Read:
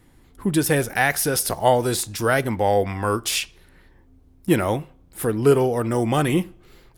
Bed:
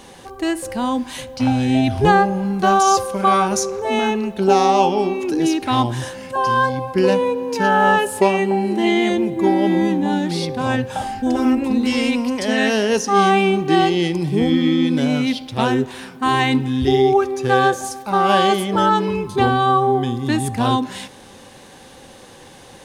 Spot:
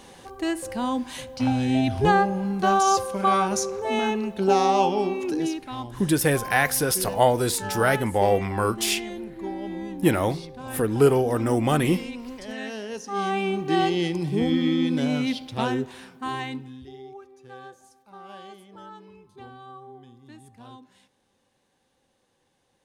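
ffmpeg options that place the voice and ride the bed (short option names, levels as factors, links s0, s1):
-filter_complex "[0:a]adelay=5550,volume=0.841[s0];[1:a]volume=1.78,afade=t=out:st=5.31:d=0.35:silence=0.281838,afade=t=in:st=13:d=0.89:silence=0.298538,afade=t=out:st=15.44:d=1.45:silence=0.0794328[s1];[s0][s1]amix=inputs=2:normalize=0"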